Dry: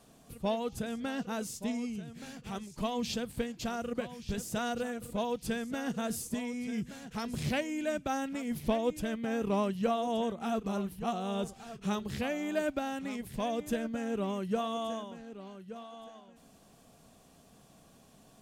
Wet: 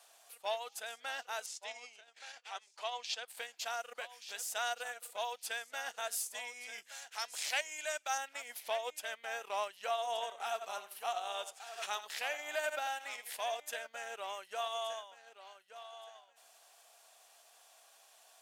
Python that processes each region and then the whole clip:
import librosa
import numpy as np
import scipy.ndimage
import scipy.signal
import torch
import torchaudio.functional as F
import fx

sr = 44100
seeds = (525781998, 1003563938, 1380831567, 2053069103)

y = fx.chain(x, sr, fx.transient(attack_db=0, sustain_db=-7),
    fx.bandpass_edges(low_hz=290.0, high_hz=6300.0), at=(1.46, 3.28))
y = fx.chain(y, sr, fx.dynamic_eq(hz=6900.0, q=1.1, threshold_db=-59.0, ratio=4.0, max_db=6),
    fx.highpass(hz=450.0, slope=6), at=(6.88, 8.18))
y = fx.chain(y, sr, fx.echo_single(ms=84, db=-10.5),
    fx.pre_swell(db_per_s=83.0), at=(10.03, 13.6))
y = scipy.signal.sosfilt(scipy.signal.butter(4, 750.0, 'highpass', fs=sr, output='sos'), y)
y = fx.peak_eq(y, sr, hz=1100.0, db=-5.5, octaves=0.41)
y = fx.transient(y, sr, attack_db=-2, sustain_db=-6)
y = y * 10.0 ** (3.0 / 20.0)